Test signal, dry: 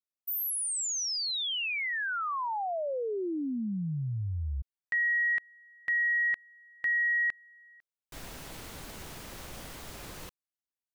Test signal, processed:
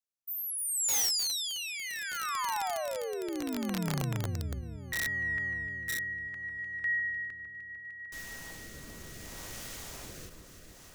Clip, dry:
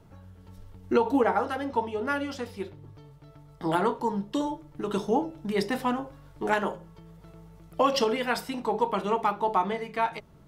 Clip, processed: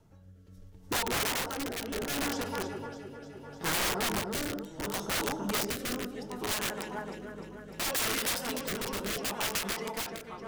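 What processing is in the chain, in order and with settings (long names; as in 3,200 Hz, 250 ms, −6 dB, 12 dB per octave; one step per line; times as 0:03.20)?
in parallel at +1 dB: speech leveller within 4 dB 2 s
on the sum: parametric band 6,300 Hz +5.5 dB 0.68 octaves
on a send: delay that swaps between a low-pass and a high-pass 151 ms, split 1,900 Hz, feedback 86%, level −7.5 dB
on the sum: wrap-around overflow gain 15.5 dB
rotating-speaker cabinet horn 0.7 Hz
high-shelf EQ 9,700 Hz +6 dB
every ending faded ahead of time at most 110 dB per second
level −9 dB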